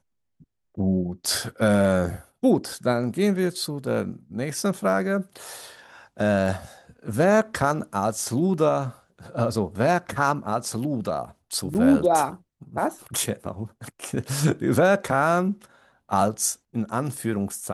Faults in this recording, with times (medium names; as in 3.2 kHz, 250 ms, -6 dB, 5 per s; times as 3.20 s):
11.74–11.75 s: dropout 8.7 ms